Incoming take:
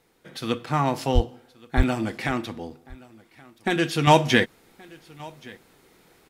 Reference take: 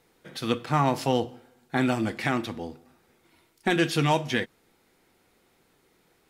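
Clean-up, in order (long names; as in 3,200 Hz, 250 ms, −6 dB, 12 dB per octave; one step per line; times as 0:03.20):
high-pass at the plosives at 0:01.14/0:01.76
repair the gap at 0:01.83/0:02.70, 4.2 ms
echo removal 1,125 ms −23.5 dB
level 0 dB, from 0:04.07 −8 dB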